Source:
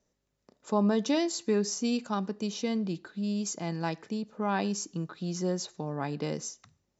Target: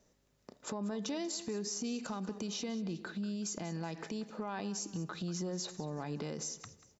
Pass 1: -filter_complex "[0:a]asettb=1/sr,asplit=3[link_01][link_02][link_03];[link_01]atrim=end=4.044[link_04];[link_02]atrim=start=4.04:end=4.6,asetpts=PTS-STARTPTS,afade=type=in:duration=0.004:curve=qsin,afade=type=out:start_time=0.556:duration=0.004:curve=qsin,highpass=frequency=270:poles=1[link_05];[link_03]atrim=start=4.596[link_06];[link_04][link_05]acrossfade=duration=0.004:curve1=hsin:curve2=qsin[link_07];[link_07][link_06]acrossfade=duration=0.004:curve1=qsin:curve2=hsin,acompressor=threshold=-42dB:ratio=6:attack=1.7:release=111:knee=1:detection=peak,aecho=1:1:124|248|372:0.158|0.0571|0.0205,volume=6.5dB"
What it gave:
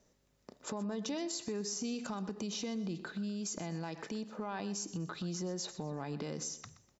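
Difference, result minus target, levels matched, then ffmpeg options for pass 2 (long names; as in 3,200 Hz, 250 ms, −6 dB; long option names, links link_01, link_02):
echo 64 ms early
-filter_complex "[0:a]asettb=1/sr,asplit=3[link_01][link_02][link_03];[link_01]atrim=end=4.044[link_04];[link_02]atrim=start=4.04:end=4.6,asetpts=PTS-STARTPTS,afade=type=in:duration=0.004:curve=qsin,afade=type=out:start_time=0.556:duration=0.004:curve=qsin,highpass=frequency=270:poles=1[link_05];[link_03]atrim=start=4.596[link_06];[link_04][link_05]acrossfade=duration=0.004:curve1=hsin:curve2=qsin[link_07];[link_07][link_06]acrossfade=duration=0.004:curve1=qsin:curve2=hsin,acompressor=threshold=-42dB:ratio=6:attack=1.7:release=111:knee=1:detection=peak,aecho=1:1:188|376|564:0.158|0.0571|0.0205,volume=6.5dB"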